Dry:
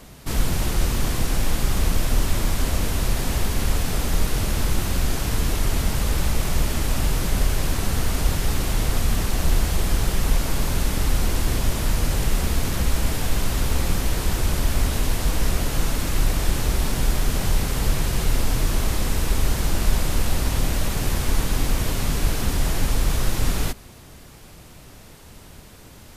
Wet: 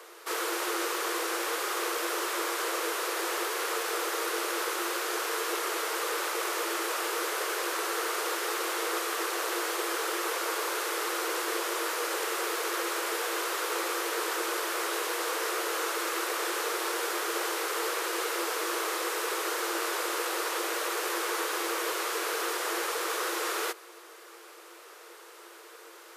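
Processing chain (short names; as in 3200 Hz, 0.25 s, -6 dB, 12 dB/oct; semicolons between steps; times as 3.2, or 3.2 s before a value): rippled Chebyshev high-pass 330 Hz, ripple 9 dB; gain +5 dB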